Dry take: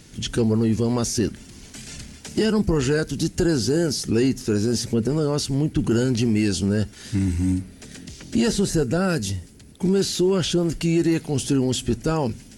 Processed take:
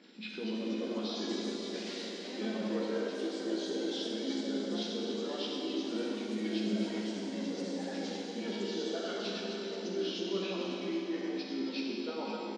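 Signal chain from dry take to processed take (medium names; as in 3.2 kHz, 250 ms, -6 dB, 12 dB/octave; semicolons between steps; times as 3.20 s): knee-point frequency compression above 1.5 kHz 1.5:1; level held to a coarse grid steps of 10 dB; elliptic high-pass 210 Hz, stop band 40 dB; on a send: reverse bouncing-ball echo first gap 100 ms, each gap 1.6×, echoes 5; on the sum: reverb removal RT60 1.9 s; doubling 15 ms -4 dB; reverse; compression 5:1, threshold -34 dBFS, peak gain reduction 18 dB; reverse; ever faster or slower copies 273 ms, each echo +3 st, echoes 3, each echo -6 dB; Schroeder reverb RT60 3.6 s, combs from 33 ms, DRR -2 dB; tape noise reduction on one side only decoder only; trim -4 dB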